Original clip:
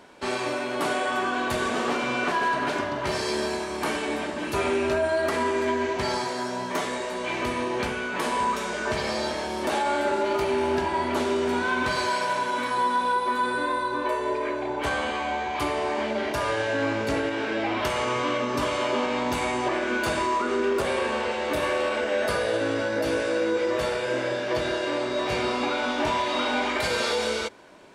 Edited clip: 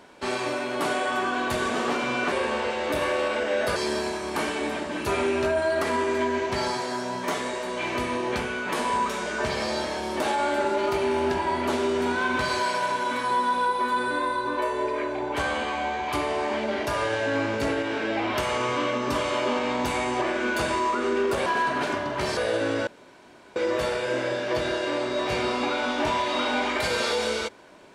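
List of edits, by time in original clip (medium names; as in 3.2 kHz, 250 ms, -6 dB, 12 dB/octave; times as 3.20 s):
2.32–3.23 s: swap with 20.93–22.37 s
22.87–23.56 s: room tone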